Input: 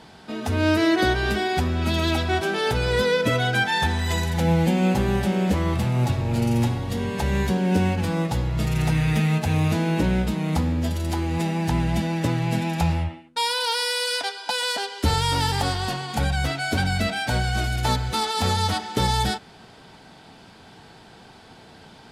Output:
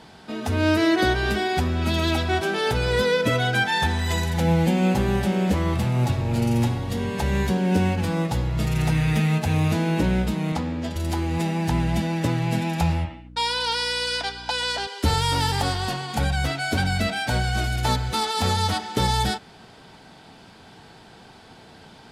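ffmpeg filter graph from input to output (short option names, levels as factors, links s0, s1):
-filter_complex "[0:a]asettb=1/sr,asplit=3[s0][s1][s2];[s0]atrim=end=10.524[s3];[s1]atrim=start=10.52:end=10.96,asetpts=PTS-STARTPTS,afade=t=in:d=0.004:c=qsin,afade=t=out:st=0.436:d=0.004:c=qsin,highpass=f=210:p=1,adynamicsmooth=sensitivity=4:basefreq=6400[s4];[s2]atrim=start=10.956[s5];[s3][s4]acrossfade=d=0.004:c1=hsin:c2=qsin[s6];[s6][s5]acrossfade=d=0.004:c1=qsin:c2=hsin,asettb=1/sr,asplit=3[s7][s8][s9];[s7]atrim=end=13.054[s10];[s8]atrim=start=13.05:end=14.87,asetpts=PTS-STARTPTS,afade=t=in:d=0.004:c=qsin,afade=t=out:st=1.816:d=0.004:c=qsin,lowpass=7100,aeval=exprs='val(0)+0.0178*(sin(2*PI*60*n/s)+sin(2*PI*2*60*n/s)/2+sin(2*PI*3*60*n/s)/3+sin(2*PI*4*60*n/s)/4+sin(2*PI*5*60*n/s)/5)':c=same,lowshelf=f=230:g=-8.5[s11];[s9]atrim=start=14.866[s12];[s10][s11]acrossfade=d=0.004:c1=hsin:c2=qsin[s13];[s13][s12]acrossfade=d=0.004:c1=qsin:c2=hsin"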